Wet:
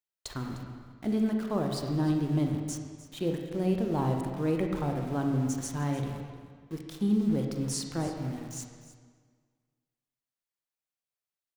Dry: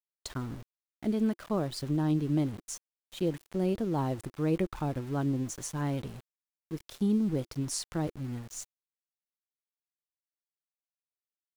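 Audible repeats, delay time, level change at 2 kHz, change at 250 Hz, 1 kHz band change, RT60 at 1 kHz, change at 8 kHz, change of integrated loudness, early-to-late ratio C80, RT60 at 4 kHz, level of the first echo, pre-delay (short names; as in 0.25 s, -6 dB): 1, 0.304 s, +2.0 dB, +1.5 dB, +2.5 dB, 1.7 s, 0.0 dB, +1.5 dB, 5.0 dB, 1.3 s, -16.5 dB, 27 ms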